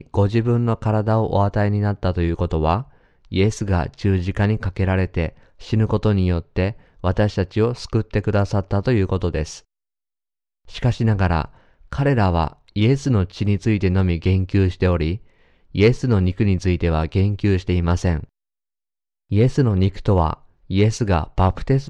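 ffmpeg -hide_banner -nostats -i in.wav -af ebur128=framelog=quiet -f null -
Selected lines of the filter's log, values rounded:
Integrated loudness:
  I:         -20.3 LUFS
  Threshold: -30.6 LUFS
Loudness range:
  LRA:         3.0 LU
  Threshold: -41.1 LUFS
  LRA low:   -22.8 LUFS
  LRA high:  -19.7 LUFS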